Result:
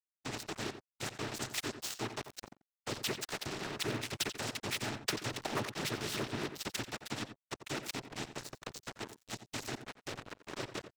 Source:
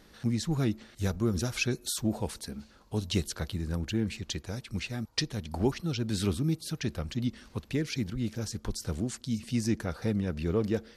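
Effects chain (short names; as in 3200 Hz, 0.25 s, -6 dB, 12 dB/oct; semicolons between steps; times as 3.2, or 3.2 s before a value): Doppler pass-by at 4.75, 9 m/s, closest 10 m; expander -53 dBFS; in parallel at -3.5 dB: bit-crush 6-bit; on the sum: comb 2.8 ms, depth 76%; wavefolder -17.5 dBFS; treble ducked by the level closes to 2000 Hz, closed at -23.5 dBFS; noise vocoder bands 12; crossover distortion -45 dBFS; echo 88 ms -18.5 dB; spectral compressor 2:1; gain -4.5 dB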